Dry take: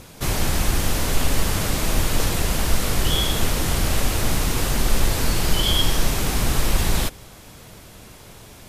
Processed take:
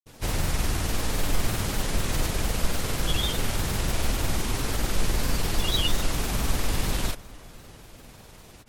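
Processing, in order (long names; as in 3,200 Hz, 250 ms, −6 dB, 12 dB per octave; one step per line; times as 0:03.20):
granular cloud, grains 20 per second, pitch spread up and down by 3 semitones
delay with a low-pass on its return 379 ms, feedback 64%, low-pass 2,100 Hz, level −22 dB
level −4 dB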